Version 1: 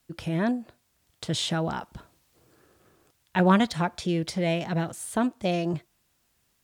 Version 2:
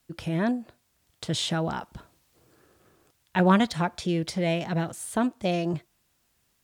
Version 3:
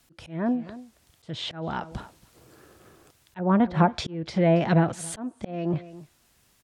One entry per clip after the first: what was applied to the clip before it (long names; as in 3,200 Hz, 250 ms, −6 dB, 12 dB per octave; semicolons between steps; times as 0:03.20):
no processing that can be heard
treble cut that deepens with the level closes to 1,100 Hz, closed at −20.5 dBFS; single-tap delay 276 ms −23 dB; volume swells 474 ms; level +7.5 dB